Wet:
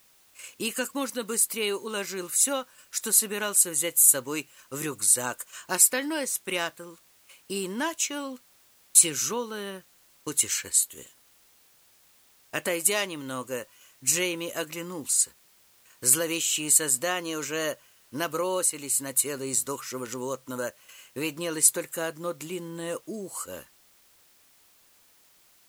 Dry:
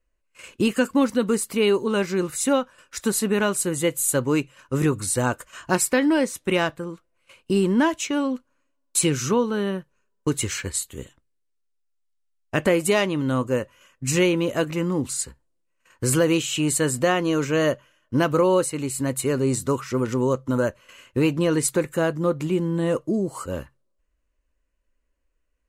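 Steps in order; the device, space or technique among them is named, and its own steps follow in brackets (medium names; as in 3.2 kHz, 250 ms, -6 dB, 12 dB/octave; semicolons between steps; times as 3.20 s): turntable without a phono preamp (RIAA curve recording; white noise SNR 31 dB); trim -7 dB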